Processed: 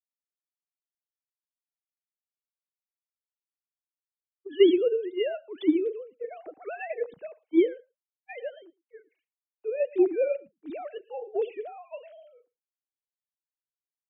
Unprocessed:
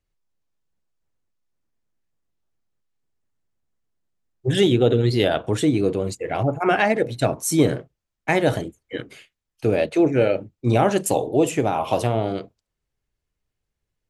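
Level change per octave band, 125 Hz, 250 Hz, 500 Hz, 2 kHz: under -40 dB, -7.0 dB, -6.5 dB, -15.5 dB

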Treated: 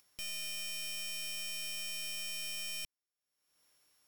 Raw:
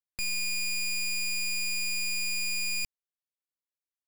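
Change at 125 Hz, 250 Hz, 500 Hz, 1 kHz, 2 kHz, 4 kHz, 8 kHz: no reading, -11.0 dB, +0.5 dB, -4.5 dB, -12.5 dB, -6.5 dB, -9.5 dB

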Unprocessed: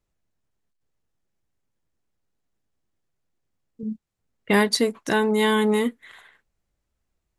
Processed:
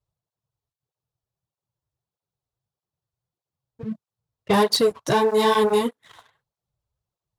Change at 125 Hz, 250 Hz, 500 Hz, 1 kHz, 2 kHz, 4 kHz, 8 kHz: +0.5 dB, -3.0 dB, +3.0 dB, +5.0 dB, -4.5 dB, +2.0 dB, -0.5 dB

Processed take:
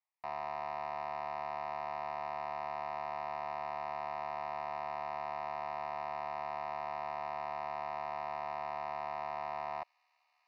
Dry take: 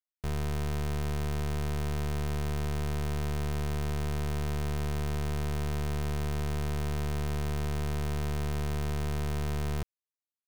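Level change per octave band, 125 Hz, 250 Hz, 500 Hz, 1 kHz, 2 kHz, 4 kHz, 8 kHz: -29.5 dB, -22.0 dB, -3.0 dB, +6.5 dB, -4.0 dB, -13.5 dB, under -25 dB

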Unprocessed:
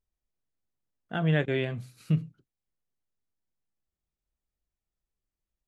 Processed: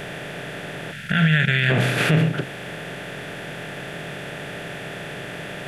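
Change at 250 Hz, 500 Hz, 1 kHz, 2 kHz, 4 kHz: +9.0 dB, +7.0 dB, +13.0 dB, +17.0 dB, no reading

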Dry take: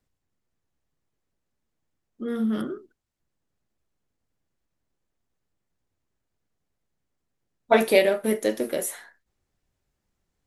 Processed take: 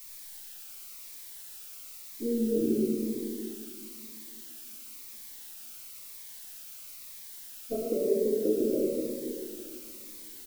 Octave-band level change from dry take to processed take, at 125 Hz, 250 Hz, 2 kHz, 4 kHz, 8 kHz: -2.5 dB, -1.0 dB, -22.5 dB, -9.0 dB, -3.0 dB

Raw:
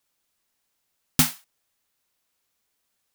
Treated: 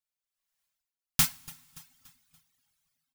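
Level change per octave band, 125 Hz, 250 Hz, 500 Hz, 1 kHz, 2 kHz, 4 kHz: -7.5 dB, -12.5 dB, -12.0 dB, -5.5 dB, -4.0 dB, -3.5 dB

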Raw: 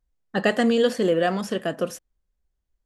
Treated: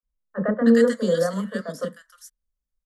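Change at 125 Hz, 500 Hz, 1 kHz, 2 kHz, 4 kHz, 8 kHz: +1.0 dB, +0.5 dB, -6.5 dB, -4.0 dB, -7.5 dB, -0.5 dB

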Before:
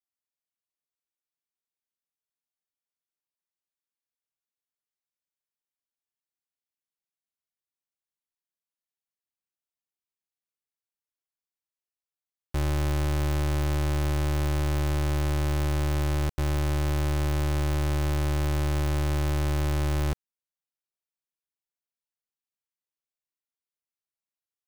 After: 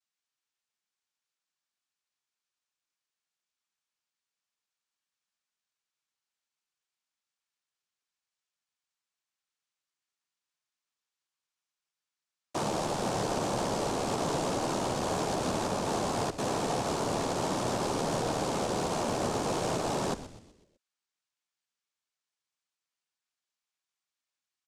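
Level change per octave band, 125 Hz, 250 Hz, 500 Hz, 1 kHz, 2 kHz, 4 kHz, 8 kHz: -12.5 dB, -1.0 dB, +3.5 dB, +5.5 dB, -2.5 dB, +2.0 dB, +5.0 dB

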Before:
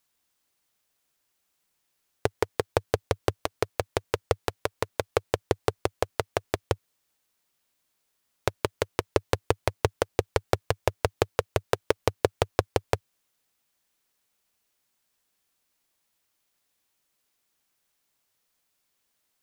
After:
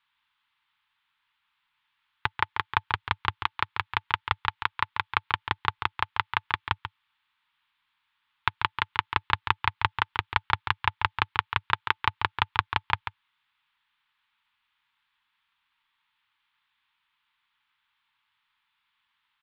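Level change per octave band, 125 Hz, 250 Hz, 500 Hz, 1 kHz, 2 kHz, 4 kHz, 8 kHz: -4.5 dB, -12.0 dB, -21.0 dB, +6.0 dB, +8.0 dB, +5.5 dB, under -20 dB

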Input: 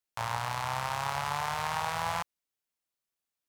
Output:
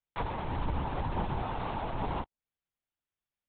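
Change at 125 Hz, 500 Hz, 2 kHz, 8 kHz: +4.0 dB, +2.0 dB, -9.0 dB, under -40 dB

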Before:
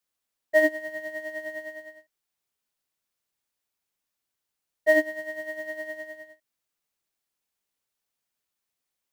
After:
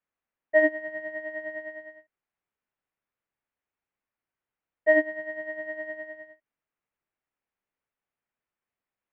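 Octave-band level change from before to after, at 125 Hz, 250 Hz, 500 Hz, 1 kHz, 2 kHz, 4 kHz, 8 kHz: no reading, 0.0 dB, 0.0 dB, 0.0 dB, -0.5 dB, under -10 dB, under -25 dB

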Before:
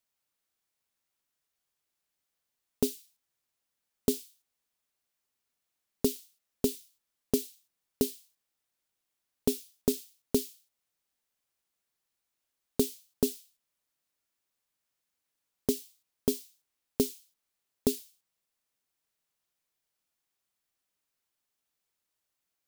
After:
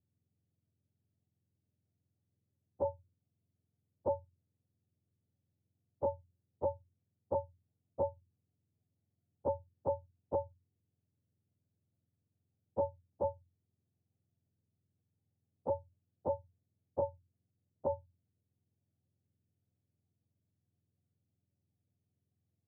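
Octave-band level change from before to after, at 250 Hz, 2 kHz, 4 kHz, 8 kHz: -18.5 dB, under -20 dB, under -35 dB, under -40 dB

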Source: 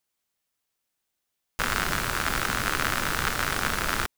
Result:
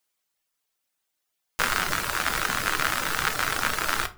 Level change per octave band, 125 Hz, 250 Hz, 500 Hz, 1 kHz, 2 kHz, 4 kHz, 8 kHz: -4.5 dB, -3.5 dB, -0.5 dB, +1.5 dB, +1.0 dB, +1.5 dB, +1.5 dB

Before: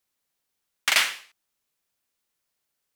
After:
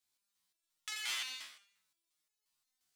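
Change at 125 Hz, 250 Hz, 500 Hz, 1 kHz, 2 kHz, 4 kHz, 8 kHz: no reading, under -15 dB, -25.0 dB, -18.5 dB, -17.5 dB, -13.0 dB, -13.0 dB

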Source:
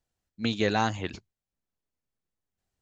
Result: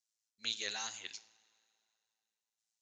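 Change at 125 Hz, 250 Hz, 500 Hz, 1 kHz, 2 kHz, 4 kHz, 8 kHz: -34.0 dB, -30.0 dB, -23.0 dB, -20.0 dB, -11.0 dB, -3.0 dB, no reading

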